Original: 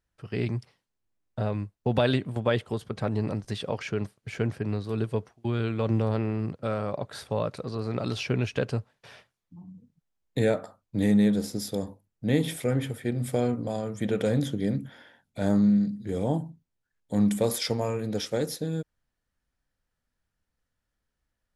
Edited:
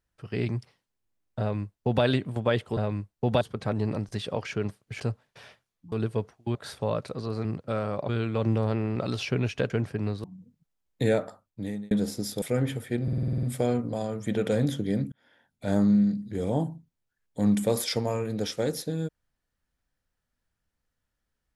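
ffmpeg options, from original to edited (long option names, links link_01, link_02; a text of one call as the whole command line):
ffmpeg -i in.wav -filter_complex "[0:a]asplit=22[link_01][link_02][link_03][link_04][link_05][link_06][link_07][link_08][link_09][link_10][link_11][link_12][link_13][link_14][link_15][link_16][link_17][link_18][link_19][link_20][link_21][link_22];[link_01]atrim=end=2.772[link_23];[link_02]atrim=start=1.398:end=2.042[link_24];[link_03]atrim=start=2.768:end=4.362[link_25];[link_04]atrim=start=8.678:end=9.602[link_26];[link_05]atrim=start=4.898:end=5.532[link_27];[link_06]atrim=start=7.038:end=7.942[link_28];[link_07]atrim=start=6.398:end=7.042[link_29];[link_08]atrim=start=5.528:end=6.402[link_30];[link_09]atrim=start=7.938:end=8.682[link_31];[link_10]atrim=start=4.358:end=4.902[link_32];[link_11]atrim=start=9.598:end=11.27,asetpts=PTS-STARTPTS,afade=type=out:start_time=1.022:duration=0.65[link_33];[link_12]atrim=start=11.27:end=11.782,asetpts=PTS-STARTPTS,afade=type=in:duration=0.004:curve=hsin[link_34];[link_13]atrim=start=12.558:end=13.222[link_35];[link_14]atrim=start=13.168:end=13.222[link_36];[link_15]atrim=start=13.168:end=13.222[link_37];[link_16]atrim=start=13.168:end=13.222[link_38];[link_17]atrim=start=13.168:end=13.222[link_39];[link_18]atrim=start=13.168:end=13.222[link_40];[link_19]atrim=start=13.168:end=13.222[link_41];[link_20]atrim=start=13.168:end=13.222[link_42];[link_21]atrim=start=13.168:end=14.86,asetpts=PTS-STARTPTS,afade=type=out:start_time=1.688:duration=0.004:curve=hsin[link_43];[link_22]atrim=start=14.86,asetpts=PTS-STARTPTS,afade=type=in:duration=0.58[link_44];[link_23][link_24]acrossfade=duration=0.004:curve1=hsin:curve2=hsin[link_45];[link_45][link_25]acrossfade=duration=0.004:curve1=hsin:curve2=hsin[link_46];[link_46][link_26]acrossfade=duration=0.004:curve1=hsin:curve2=hsin[link_47];[link_47][link_27]acrossfade=duration=0.004:curve1=hsin:curve2=hsin[link_48];[link_48][link_28]acrossfade=duration=0.004:curve1=hsin:curve2=hsin[link_49];[link_49][link_29]acrossfade=duration=0.004:curve1=hsin:curve2=hsin[link_50];[link_50][link_30]acrossfade=duration=0.004:curve1=hsin:curve2=hsin[link_51];[link_51][link_31]acrossfade=duration=0.004:curve1=hsin:curve2=hsin[link_52];[link_52][link_32]acrossfade=duration=0.004:curve1=hsin:curve2=hsin[link_53];[link_33][link_34]concat=n=2:v=0:a=1[link_54];[link_53][link_54]acrossfade=duration=0.004:curve1=hsin:curve2=hsin[link_55];[link_55][link_35]acrossfade=duration=0.004:curve1=hsin:curve2=hsin[link_56];[link_56][link_36]acrossfade=duration=0.004:curve1=hsin:curve2=hsin[link_57];[link_57][link_37]acrossfade=duration=0.004:curve1=hsin:curve2=hsin[link_58];[link_58][link_38]acrossfade=duration=0.004:curve1=hsin:curve2=hsin[link_59];[link_59][link_39]acrossfade=duration=0.004:curve1=hsin:curve2=hsin[link_60];[link_60][link_40]acrossfade=duration=0.004:curve1=hsin:curve2=hsin[link_61];[link_61][link_41]acrossfade=duration=0.004:curve1=hsin:curve2=hsin[link_62];[link_62][link_42]acrossfade=duration=0.004:curve1=hsin:curve2=hsin[link_63];[link_43][link_44]concat=n=2:v=0:a=1[link_64];[link_63][link_64]acrossfade=duration=0.004:curve1=hsin:curve2=hsin" out.wav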